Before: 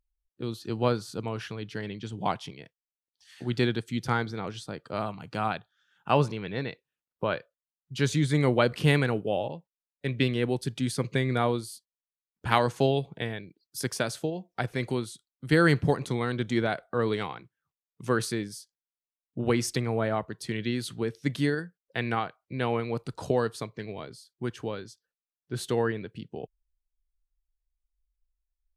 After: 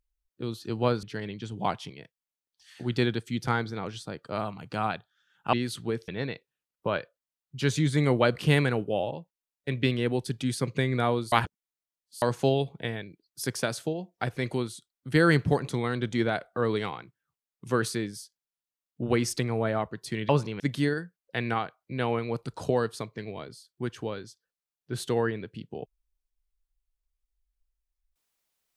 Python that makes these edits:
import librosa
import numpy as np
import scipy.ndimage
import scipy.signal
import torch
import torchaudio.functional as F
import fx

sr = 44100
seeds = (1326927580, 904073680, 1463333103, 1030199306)

y = fx.edit(x, sr, fx.cut(start_s=1.03, length_s=0.61),
    fx.swap(start_s=6.14, length_s=0.31, other_s=20.66, other_length_s=0.55),
    fx.reverse_span(start_s=11.69, length_s=0.9), tone=tone)